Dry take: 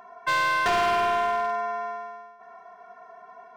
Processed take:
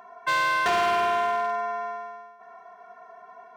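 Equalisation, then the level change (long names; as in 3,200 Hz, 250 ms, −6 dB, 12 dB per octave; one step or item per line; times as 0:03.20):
high-pass filter 130 Hz 6 dB per octave
notch filter 5,000 Hz, Q 26
0.0 dB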